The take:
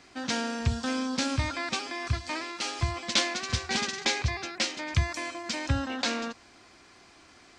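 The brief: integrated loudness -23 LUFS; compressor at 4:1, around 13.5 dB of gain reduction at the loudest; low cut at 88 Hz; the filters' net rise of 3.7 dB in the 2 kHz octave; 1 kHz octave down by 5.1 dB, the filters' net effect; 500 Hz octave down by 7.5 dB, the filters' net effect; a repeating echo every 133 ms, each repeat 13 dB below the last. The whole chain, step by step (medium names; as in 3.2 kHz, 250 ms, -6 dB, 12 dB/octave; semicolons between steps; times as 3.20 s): high-pass 88 Hz; peaking EQ 500 Hz -8.5 dB; peaking EQ 1 kHz -6.5 dB; peaking EQ 2 kHz +6.5 dB; compression 4:1, threshold -38 dBFS; feedback delay 133 ms, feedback 22%, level -13 dB; trim +16 dB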